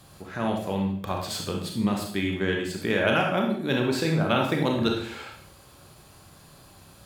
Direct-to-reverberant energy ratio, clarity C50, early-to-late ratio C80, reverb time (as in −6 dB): 0.5 dB, 4.0 dB, 8.0 dB, 0.60 s